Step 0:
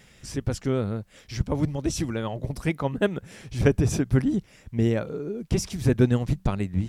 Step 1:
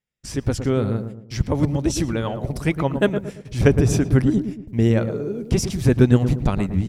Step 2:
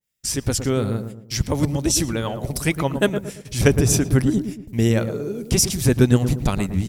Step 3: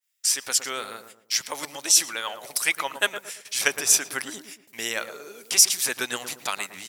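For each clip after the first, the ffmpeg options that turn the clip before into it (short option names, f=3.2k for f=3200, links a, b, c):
-filter_complex "[0:a]agate=range=-39dB:threshold=-42dB:ratio=16:detection=peak,asplit=2[a][b];[b]adelay=114,lowpass=f=930:p=1,volume=-7.5dB,asplit=2[c][d];[d]adelay=114,lowpass=f=930:p=1,volume=0.42,asplit=2[e][f];[f]adelay=114,lowpass=f=930:p=1,volume=0.42,asplit=2[g][h];[h]adelay=114,lowpass=f=930:p=1,volume=0.42,asplit=2[i][j];[j]adelay=114,lowpass=f=930:p=1,volume=0.42[k];[c][e][g][i][k]amix=inputs=5:normalize=0[l];[a][l]amix=inputs=2:normalize=0,volume=4.5dB"
-af "crystalizer=i=4:c=0,adynamicequalizer=threshold=0.0224:dfrequency=1700:dqfactor=0.7:tfrequency=1700:tqfactor=0.7:attack=5:release=100:ratio=0.375:range=2:mode=cutabove:tftype=highshelf,volume=-1dB"
-af "highpass=1.2k,volume=3.5dB"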